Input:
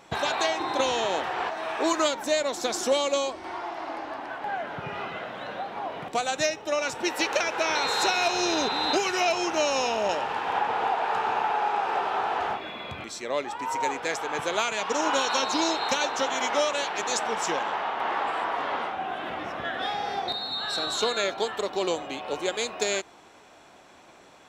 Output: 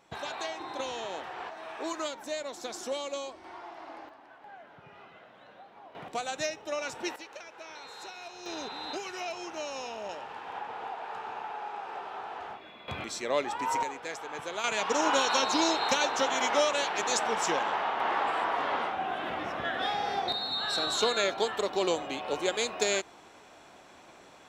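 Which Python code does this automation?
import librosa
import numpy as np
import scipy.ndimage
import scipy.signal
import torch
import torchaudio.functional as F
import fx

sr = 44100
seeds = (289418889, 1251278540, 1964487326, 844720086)

y = fx.gain(x, sr, db=fx.steps((0.0, -10.5), (4.09, -18.0), (5.95, -7.0), (7.16, -20.0), (8.46, -12.5), (12.88, 0.0), (13.83, -9.0), (14.64, -1.0)))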